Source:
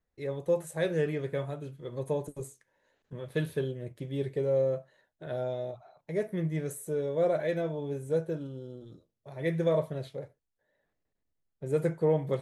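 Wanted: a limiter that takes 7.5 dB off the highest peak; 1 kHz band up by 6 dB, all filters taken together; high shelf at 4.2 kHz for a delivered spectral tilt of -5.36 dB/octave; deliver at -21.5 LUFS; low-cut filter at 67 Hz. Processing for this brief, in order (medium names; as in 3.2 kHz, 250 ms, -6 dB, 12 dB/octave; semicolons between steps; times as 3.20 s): high-pass 67 Hz; peaking EQ 1 kHz +8 dB; treble shelf 4.2 kHz +6.5 dB; trim +11.5 dB; peak limiter -9.5 dBFS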